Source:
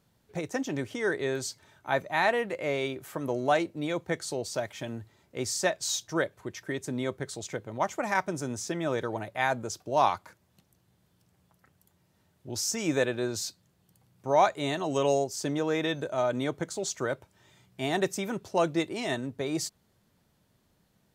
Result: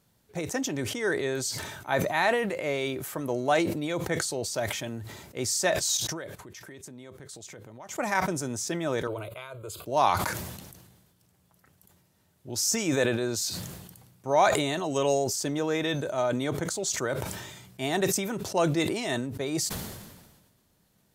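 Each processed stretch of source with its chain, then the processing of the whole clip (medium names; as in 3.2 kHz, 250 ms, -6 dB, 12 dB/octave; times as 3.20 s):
5.97–7.89 s: gate -57 dBFS, range -28 dB + compression 4:1, threshold -45 dBFS
9.07–9.86 s: compression 12:1, threshold -31 dBFS + static phaser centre 1.2 kHz, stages 8
whole clip: peaking EQ 13 kHz +6.5 dB 1.7 oct; decay stretcher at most 42 dB/s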